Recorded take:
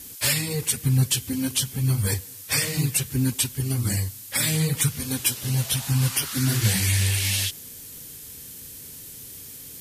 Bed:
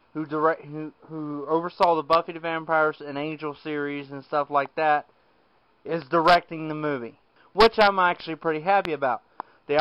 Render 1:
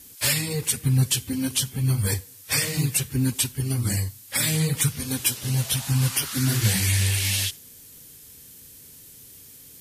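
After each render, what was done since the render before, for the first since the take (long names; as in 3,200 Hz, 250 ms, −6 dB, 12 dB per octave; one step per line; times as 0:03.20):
noise reduction from a noise print 6 dB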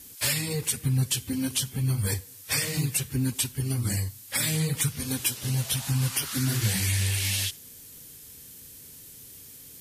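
downward compressor 1.5 to 1, threshold −29 dBFS, peak gain reduction 5 dB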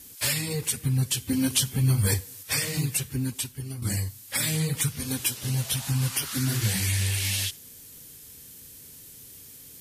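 0:01.29–0:02.43: clip gain +4 dB
0:02.95–0:03.82: fade out, to −9.5 dB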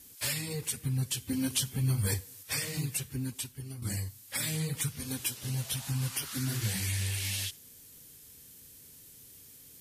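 level −6.5 dB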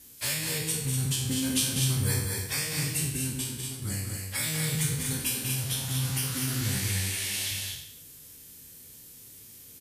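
peak hold with a decay on every bin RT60 0.74 s
on a send: loudspeakers that aren't time-aligned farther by 68 metres −6 dB, 83 metres −5 dB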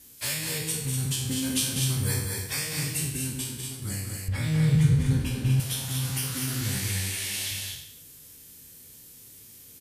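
0:04.28–0:05.60: RIAA equalisation playback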